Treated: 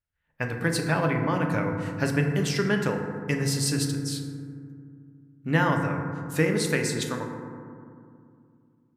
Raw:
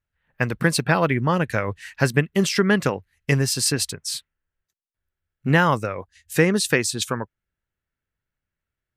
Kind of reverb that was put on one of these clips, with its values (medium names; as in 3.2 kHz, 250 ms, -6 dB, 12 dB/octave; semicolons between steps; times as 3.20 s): FDN reverb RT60 2.3 s, low-frequency decay 1.45×, high-frequency decay 0.3×, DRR 2 dB; trim -7.5 dB